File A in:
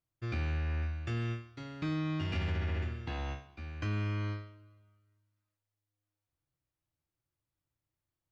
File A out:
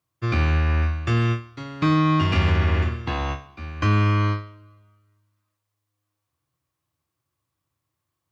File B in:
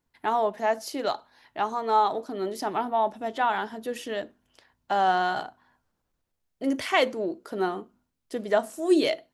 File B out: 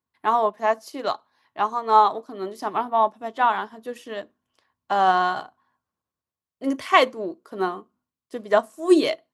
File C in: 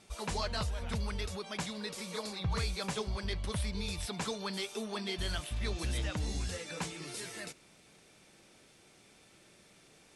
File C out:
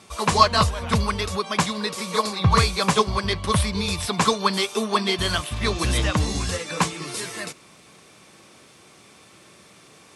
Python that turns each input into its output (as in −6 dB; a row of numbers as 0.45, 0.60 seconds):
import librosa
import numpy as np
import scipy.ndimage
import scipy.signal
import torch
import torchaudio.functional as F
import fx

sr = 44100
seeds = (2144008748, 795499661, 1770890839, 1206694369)

y = scipy.signal.sosfilt(scipy.signal.butter(4, 67.0, 'highpass', fs=sr, output='sos'), x)
y = fx.peak_eq(y, sr, hz=1100.0, db=11.0, octaves=0.21)
y = fx.upward_expand(y, sr, threshold_db=-44.0, expansion=1.5)
y = y * 10.0 ** (-24 / 20.0) / np.sqrt(np.mean(np.square(y)))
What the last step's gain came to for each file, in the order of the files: +15.5, +5.5, +18.5 decibels